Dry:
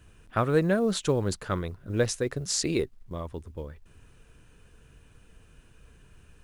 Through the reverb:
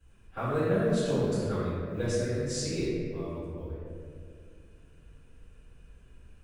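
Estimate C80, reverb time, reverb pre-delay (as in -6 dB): -1.0 dB, 2.2 s, 3 ms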